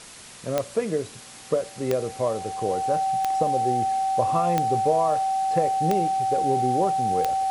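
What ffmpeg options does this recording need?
ffmpeg -i in.wav -af "adeclick=threshold=4,bandreject=frequency=770:width=30,afwtdn=0.0079" out.wav

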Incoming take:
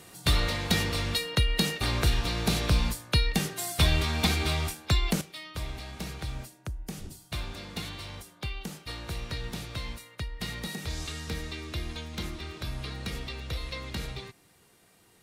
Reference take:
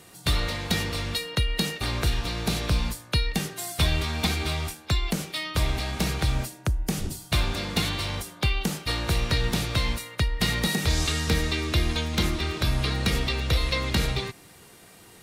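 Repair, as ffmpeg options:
ffmpeg -i in.wav -af "asetnsamples=nb_out_samples=441:pad=0,asendcmd='5.21 volume volume 11dB',volume=0dB" out.wav

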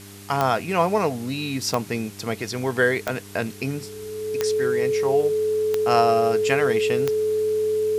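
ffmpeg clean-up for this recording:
ffmpeg -i in.wav -af "adeclick=threshold=4,bandreject=frequency=99.6:width_type=h:width=4,bandreject=frequency=199.2:width_type=h:width=4,bandreject=frequency=298.8:width_type=h:width=4,bandreject=frequency=398.4:width_type=h:width=4,bandreject=frequency=430:width=30,afwtdn=0.0063" out.wav

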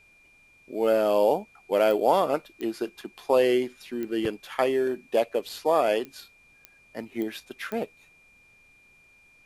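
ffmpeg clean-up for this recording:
ffmpeg -i in.wav -af "adeclick=threshold=4,bandreject=frequency=2400:width=30,agate=range=-21dB:threshold=-50dB" out.wav

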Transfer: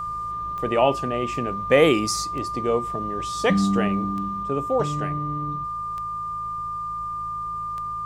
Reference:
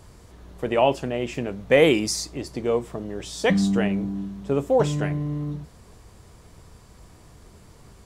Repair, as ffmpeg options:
ffmpeg -i in.wav -af "adeclick=threshold=4,bandreject=frequency=54.2:width_type=h:width=4,bandreject=frequency=108.4:width_type=h:width=4,bandreject=frequency=162.6:width_type=h:width=4,bandreject=frequency=1200:width=30,asetnsamples=nb_out_samples=441:pad=0,asendcmd='4.43 volume volume 3.5dB',volume=0dB" out.wav

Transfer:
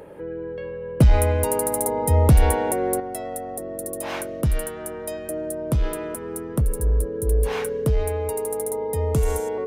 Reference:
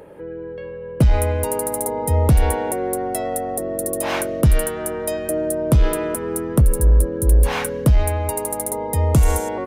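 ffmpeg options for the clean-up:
ffmpeg -i in.wav -af "bandreject=frequency=440:width=30,asetnsamples=nb_out_samples=441:pad=0,asendcmd='3 volume volume 7dB',volume=0dB" out.wav

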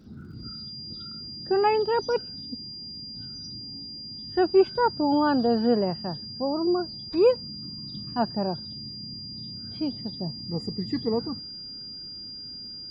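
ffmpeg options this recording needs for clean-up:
ffmpeg -i in.wav -af "adeclick=threshold=4,bandreject=frequency=4800:width=30" out.wav

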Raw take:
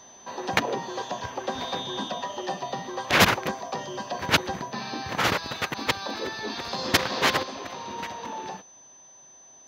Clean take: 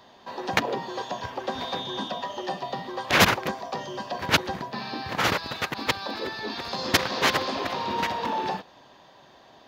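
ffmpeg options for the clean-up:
ffmpeg -i in.wav -af "bandreject=frequency=6100:width=30,asetnsamples=nb_out_samples=441:pad=0,asendcmd='7.43 volume volume 7.5dB',volume=0dB" out.wav

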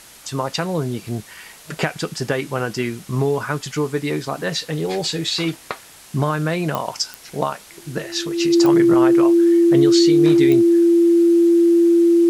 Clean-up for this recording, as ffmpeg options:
ffmpeg -i in.wav -af "adeclick=threshold=4,bandreject=frequency=340:width=30,afwtdn=0.0079" out.wav

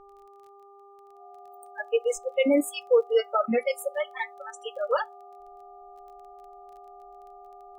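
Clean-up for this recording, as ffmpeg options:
ffmpeg -i in.wav -af "adeclick=threshold=4,bandreject=frequency=399.6:width_type=h:width=4,bandreject=frequency=799.2:width_type=h:width=4,bandreject=frequency=1198.8:width_type=h:width=4,bandreject=frequency=720:width=30" out.wav

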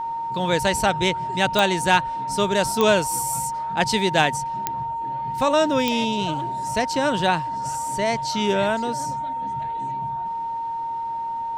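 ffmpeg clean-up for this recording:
ffmpeg -i in.wav -af "adeclick=threshold=4,bandreject=frequency=920:width=30" out.wav

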